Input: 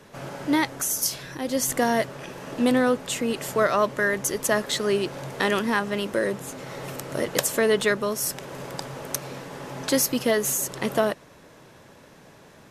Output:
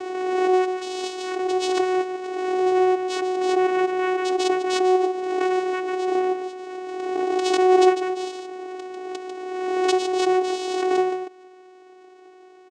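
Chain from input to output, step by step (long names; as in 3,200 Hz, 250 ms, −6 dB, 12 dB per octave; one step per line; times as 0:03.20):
dynamic equaliser 880 Hz, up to −5 dB, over −37 dBFS, Q 1
in parallel at −4 dB: sample-rate reduction 1,400 Hz
on the sum: single-tap delay 146 ms −7.5 dB
channel vocoder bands 4, saw 370 Hz
background raised ahead of every attack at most 29 dB per second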